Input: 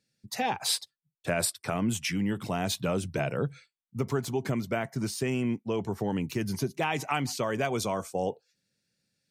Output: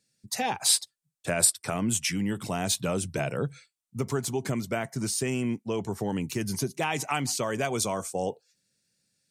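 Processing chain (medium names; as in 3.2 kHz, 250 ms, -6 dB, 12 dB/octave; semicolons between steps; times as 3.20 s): peaking EQ 8.5 kHz +9.5 dB 1.2 oct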